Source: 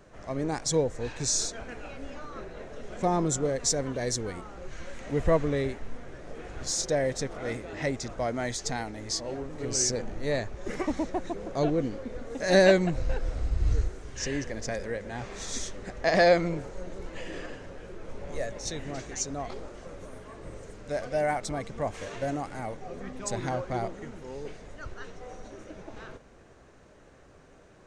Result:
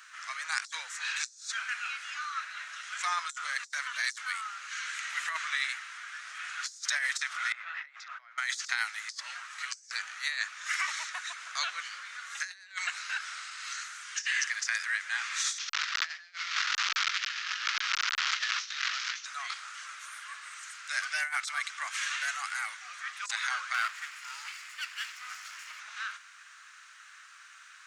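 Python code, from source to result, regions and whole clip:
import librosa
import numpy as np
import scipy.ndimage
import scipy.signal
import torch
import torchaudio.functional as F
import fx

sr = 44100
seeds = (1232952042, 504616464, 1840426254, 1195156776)

y = fx.chain(x, sr, fx.over_compress(threshold_db=-40.0, ratio=-1.0),
    fx.spacing_loss(db_at_10k=39), at=(7.52, 8.38))
y = fx.chain(y, sr, fx.delta_mod(bps=32000, step_db=-27.5),
    fx.over_compress(threshold_db=-32.0, ratio=-0.5), at=(15.58, 19.25))
y = fx.chain(y, sr, fx.lower_of_two(delay_ms=0.4),
    fx.low_shelf(hz=370.0, db=7.5), at=(23.74, 25.8))
y = scipy.signal.sosfilt(scipy.signal.ellip(4, 1.0, 70, 1300.0, 'highpass', fs=sr, output='sos'), y)
y = fx.over_compress(y, sr, threshold_db=-41.0, ratio=-0.5)
y = y * librosa.db_to_amplitude(8.5)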